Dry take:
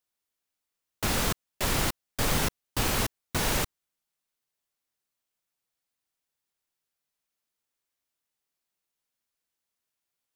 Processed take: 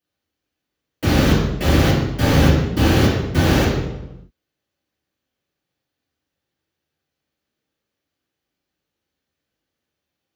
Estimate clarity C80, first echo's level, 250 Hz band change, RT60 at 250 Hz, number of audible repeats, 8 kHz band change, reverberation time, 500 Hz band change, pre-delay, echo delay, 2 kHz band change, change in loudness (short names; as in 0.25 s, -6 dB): 4.0 dB, none, +17.5 dB, 1.2 s, none, -0.5 dB, 1.0 s, +14.0 dB, 3 ms, none, +8.5 dB, +11.5 dB